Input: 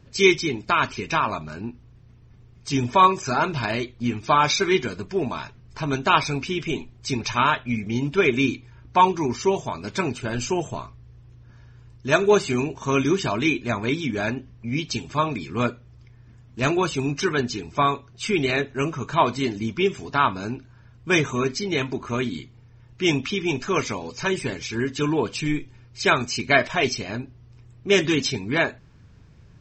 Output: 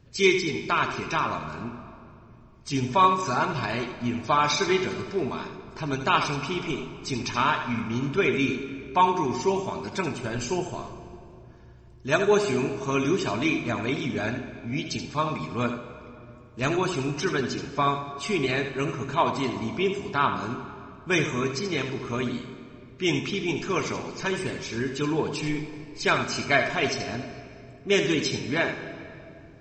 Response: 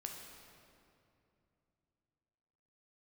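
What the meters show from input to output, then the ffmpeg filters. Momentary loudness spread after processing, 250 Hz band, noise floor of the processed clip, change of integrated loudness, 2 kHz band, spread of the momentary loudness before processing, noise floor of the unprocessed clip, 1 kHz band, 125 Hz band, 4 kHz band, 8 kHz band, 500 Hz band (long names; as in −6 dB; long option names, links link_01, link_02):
15 LU, −3.0 dB, −48 dBFS, −3.0 dB, −3.0 dB, 11 LU, −50 dBFS, −3.0 dB, −3.0 dB, −3.0 dB, −3.5 dB, −3.0 dB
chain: -filter_complex "[0:a]asplit=2[link_01][link_02];[1:a]atrim=start_sample=2205,adelay=78[link_03];[link_02][link_03]afir=irnorm=-1:irlink=0,volume=-4dB[link_04];[link_01][link_04]amix=inputs=2:normalize=0,volume=-4dB"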